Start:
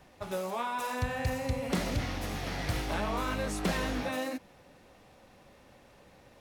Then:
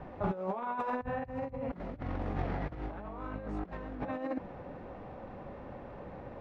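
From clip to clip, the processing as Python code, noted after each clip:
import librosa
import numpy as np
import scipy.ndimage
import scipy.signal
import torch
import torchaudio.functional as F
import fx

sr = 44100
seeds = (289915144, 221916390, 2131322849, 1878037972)

y = scipy.signal.sosfilt(scipy.signal.butter(2, 1200.0, 'lowpass', fs=sr, output='sos'), x)
y = fx.over_compress(y, sr, threshold_db=-40.0, ratio=-0.5)
y = F.gain(torch.from_numpy(y), 5.0).numpy()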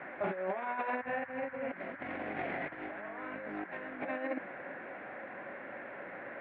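y = fx.dmg_noise_band(x, sr, seeds[0], low_hz=810.0, high_hz=1800.0, level_db=-52.0)
y = fx.cabinet(y, sr, low_hz=420.0, low_slope=12, high_hz=2900.0, hz=(460.0, 880.0, 1200.0, 2200.0), db=(-8, -9, -10, 6))
y = F.gain(torch.from_numpy(y), 6.0).numpy()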